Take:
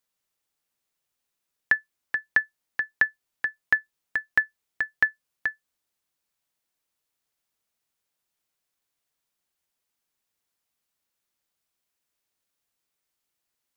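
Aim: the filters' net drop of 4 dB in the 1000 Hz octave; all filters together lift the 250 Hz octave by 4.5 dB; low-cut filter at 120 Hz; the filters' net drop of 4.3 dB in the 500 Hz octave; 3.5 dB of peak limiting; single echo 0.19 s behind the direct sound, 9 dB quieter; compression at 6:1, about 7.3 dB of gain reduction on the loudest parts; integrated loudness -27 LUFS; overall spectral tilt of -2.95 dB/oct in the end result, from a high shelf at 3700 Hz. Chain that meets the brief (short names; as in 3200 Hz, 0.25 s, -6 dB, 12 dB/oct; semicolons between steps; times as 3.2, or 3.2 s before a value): HPF 120 Hz; bell 250 Hz +8 dB; bell 500 Hz -6.5 dB; bell 1000 Hz -5.5 dB; high shelf 3700 Hz +6.5 dB; compressor 6:1, threshold -24 dBFS; limiter -13.5 dBFS; echo 0.19 s -9 dB; gain +7 dB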